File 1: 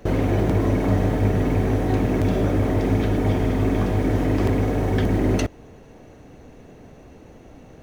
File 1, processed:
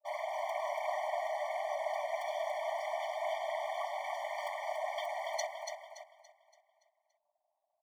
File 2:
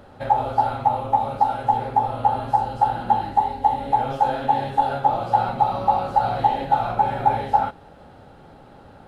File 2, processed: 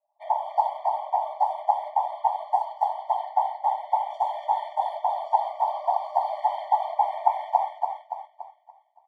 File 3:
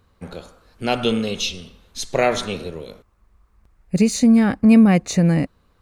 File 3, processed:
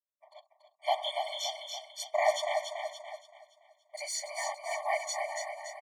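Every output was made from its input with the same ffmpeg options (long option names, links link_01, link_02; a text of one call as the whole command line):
ffmpeg -i in.wav -af "anlmdn=1,lowshelf=frequency=190:gain=-7,afftfilt=real='hypot(re,im)*cos(2*PI*random(0))':imag='hypot(re,im)*sin(2*PI*random(1))':win_size=512:overlap=0.75,adynamicequalizer=threshold=0.0126:dfrequency=620:dqfactor=3.5:tfrequency=620:tqfactor=3.5:attack=5:release=100:ratio=0.375:range=1.5:mode=boostabove:tftype=bell,aecho=1:1:285|570|855|1140|1425|1710:0.531|0.26|0.127|0.0625|0.0306|0.015,aeval=exprs='val(0)+0.0141*(sin(2*PI*60*n/s)+sin(2*PI*2*60*n/s)/2+sin(2*PI*3*60*n/s)/3+sin(2*PI*4*60*n/s)/4+sin(2*PI*5*60*n/s)/5)':channel_layout=same,agate=range=-6dB:threshold=-36dB:ratio=16:detection=peak,afftfilt=real='re*eq(mod(floor(b*sr/1024/600),2),1)':imag='im*eq(mod(floor(b*sr/1024/600),2),1)':win_size=1024:overlap=0.75" out.wav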